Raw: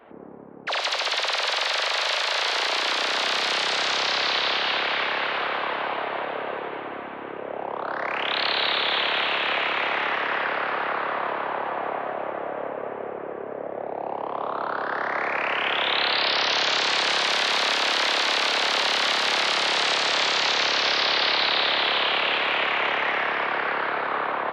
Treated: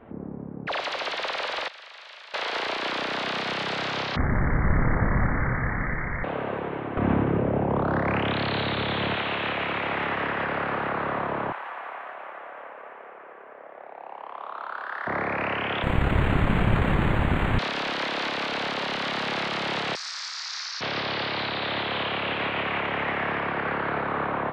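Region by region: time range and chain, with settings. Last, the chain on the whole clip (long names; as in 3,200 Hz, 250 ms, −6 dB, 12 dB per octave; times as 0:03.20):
0:01.68–0:02.34: low-pass filter 1,400 Hz 6 dB per octave + first difference
0:04.16–0:06.24: phase distortion by the signal itself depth 0.12 ms + inverse Chebyshev high-pass filter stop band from 160 Hz, stop band 70 dB + voice inversion scrambler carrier 2,800 Hz
0:06.97–0:09.15: low-shelf EQ 300 Hz +10.5 dB + envelope flattener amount 100%
0:11.52–0:15.07: running median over 5 samples + high-pass filter 1,200 Hz
0:15.83–0:17.59: wrap-around overflow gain 16 dB + linearly interpolated sample-rate reduction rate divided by 8×
0:19.95–0:20.81: inverse Chebyshev high-pass filter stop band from 200 Hz, stop band 80 dB + high shelf with overshoot 4,000 Hz +10 dB, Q 3
whole clip: low-shelf EQ 300 Hz +8.5 dB; brickwall limiter −15.5 dBFS; bass and treble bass +12 dB, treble −11 dB; level −2.5 dB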